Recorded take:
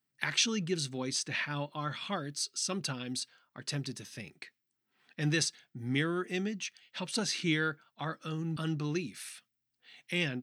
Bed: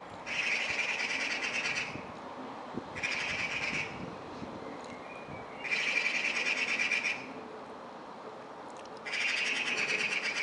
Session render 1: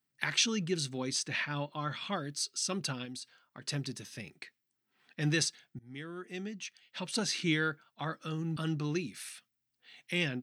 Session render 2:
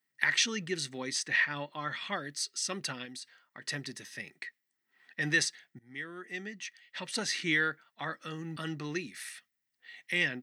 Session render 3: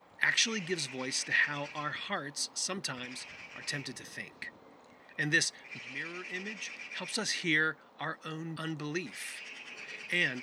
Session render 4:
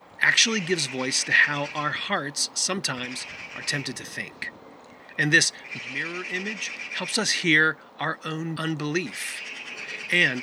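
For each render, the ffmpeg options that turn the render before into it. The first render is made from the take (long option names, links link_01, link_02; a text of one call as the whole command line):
ffmpeg -i in.wav -filter_complex "[0:a]asettb=1/sr,asplit=3[link_01][link_02][link_03];[link_01]atrim=end=1.434[link_04];[link_02]atrim=start=1.43:end=2.14,asetpts=PTS-STARTPTS,afade=type=in:duration=0.004:curve=qsin,afade=type=out:start_time=0.706:duration=0.004:curve=qsin,equalizer=frequency=11000:width=1.5:gain=-7.5[link_05];[link_03]atrim=start=2.136[link_06];[link_04][link_05]acrossfade=duration=0.004:curve1=hsin:curve2=qsin[link_07];[link_07][link_06]acrossfade=duration=0.004:curve1=qsin:curve2=hsin,asettb=1/sr,asplit=3[link_08][link_09][link_10];[link_08]atrim=end=3.054[link_11];[link_09]atrim=start=3.05:end=3.63,asetpts=PTS-STARTPTS,afade=type=in:duration=0.004:curve=qsin,afade=type=out:start_time=0.576:duration=0.004:curve=qsin,acompressor=threshold=-42dB:ratio=3:attack=3.2:release=140:knee=1:detection=peak[link_12];[link_10]atrim=start=3.626[link_13];[link_11][link_12]acrossfade=duration=0.004:curve1=hsin:curve2=qsin[link_14];[link_14][link_13]acrossfade=duration=0.004:curve1=qsin:curve2=hsin,asplit=2[link_15][link_16];[link_15]atrim=end=5.79,asetpts=PTS-STARTPTS,afade=type=out:start_time=5.786:duration=0.004:curve=hsin:silence=0.0794328[link_17];[link_16]atrim=start=5.79,asetpts=PTS-STARTPTS,afade=type=in:duration=1.41:silence=0.0794328[link_18];[link_17][link_18]concat=n=2:v=0:a=1" out.wav
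ffmpeg -i in.wav -af "highpass=frequency=290:poles=1,equalizer=frequency=1900:width=6.2:gain=13.5" out.wav
ffmpeg -i in.wav -i bed.wav -filter_complex "[1:a]volume=-14dB[link_01];[0:a][link_01]amix=inputs=2:normalize=0" out.wav
ffmpeg -i in.wav -af "volume=9.5dB,alimiter=limit=-3dB:level=0:latency=1" out.wav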